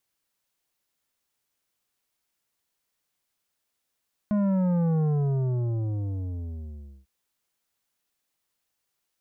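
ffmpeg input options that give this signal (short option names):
-f lavfi -i "aevalsrc='0.0794*clip((2.75-t)/2.06,0,1)*tanh(3.16*sin(2*PI*210*2.75/log(65/210)*(exp(log(65/210)*t/2.75)-1)))/tanh(3.16)':d=2.75:s=44100"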